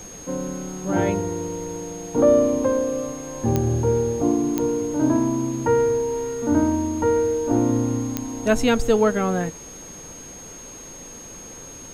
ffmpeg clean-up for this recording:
-af "adeclick=t=4,bandreject=f=6.5k:w=30,afftdn=nr=28:nf=-39"

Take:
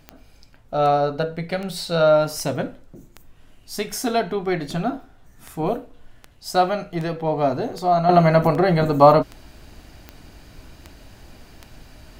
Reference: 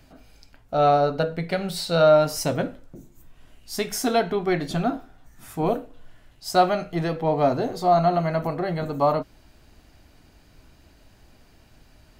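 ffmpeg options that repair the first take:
-af "adeclick=t=4,agate=range=-21dB:threshold=-40dB,asetnsamples=n=441:p=0,asendcmd='8.09 volume volume -9dB',volume=0dB"

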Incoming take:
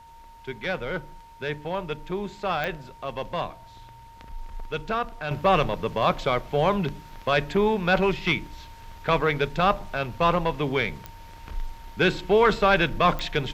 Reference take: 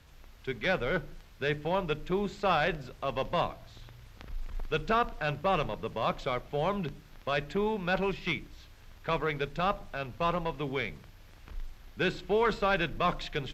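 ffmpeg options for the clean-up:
-af "adeclick=t=4,bandreject=f=920:w=30,agate=range=-21dB:threshold=-38dB,asetnsamples=n=441:p=0,asendcmd='5.31 volume volume -8dB',volume=0dB"

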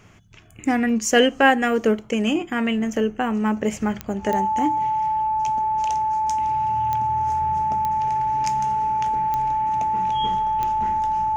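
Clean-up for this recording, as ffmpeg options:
-af "adeclick=t=4,bandreject=f=870:w=30"

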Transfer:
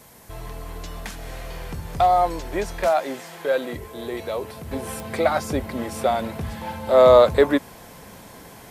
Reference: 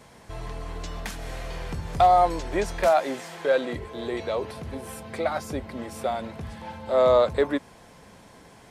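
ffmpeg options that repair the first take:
-af "adeclick=t=4,agate=range=-21dB:threshold=-36dB,asetnsamples=n=441:p=0,asendcmd='4.71 volume volume -6.5dB',volume=0dB"

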